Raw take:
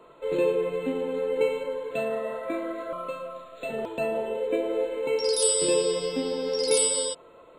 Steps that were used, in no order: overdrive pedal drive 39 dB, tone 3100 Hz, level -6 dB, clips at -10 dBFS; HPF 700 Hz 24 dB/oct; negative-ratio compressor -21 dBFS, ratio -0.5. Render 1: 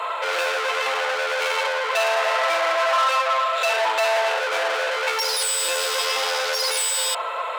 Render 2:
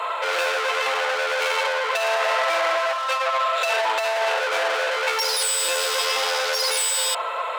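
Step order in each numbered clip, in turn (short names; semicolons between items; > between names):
negative-ratio compressor > overdrive pedal > HPF; overdrive pedal > HPF > negative-ratio compressor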